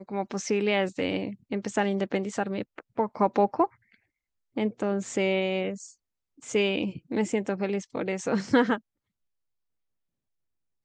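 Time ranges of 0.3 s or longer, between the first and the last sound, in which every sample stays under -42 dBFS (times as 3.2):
3.67–4.56
5.9–6.43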